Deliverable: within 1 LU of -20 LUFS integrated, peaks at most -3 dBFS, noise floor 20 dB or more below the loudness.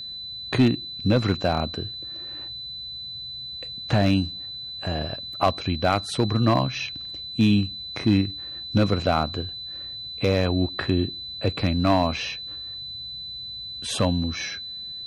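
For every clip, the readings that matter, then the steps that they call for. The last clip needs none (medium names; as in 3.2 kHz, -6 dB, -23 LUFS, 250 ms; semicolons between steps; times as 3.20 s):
clipped samples 0.3%; clipping level -11.0 dBFS; steady tone 4 kHz; tone level -33 dBFS; loudness -25.5 LUFS; peak level -11.0 dBFS; loudness target -20.0 LUFS
-> clip repair -11 dBFS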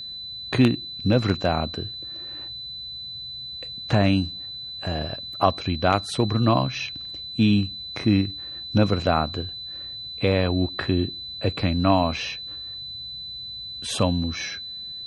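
clipped samples 0.0%; steady tone 4 kHz; tone level -33 dBFS
-> band-stop 4 kHz, Q 30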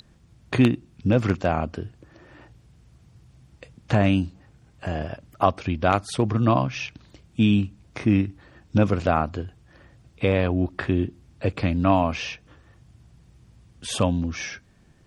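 steady tone not found; loudness -24.0 LUFS; peak level -2.0 dBFS; loudness target -20.0 LUFS
-> trim +4 dB; peak limiter -3 dBFS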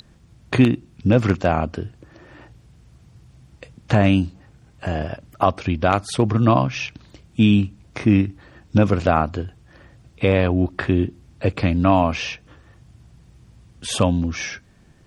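loudness -20.5 LUFS; peak level -3.0 dBFS; noise floor -53 dBFS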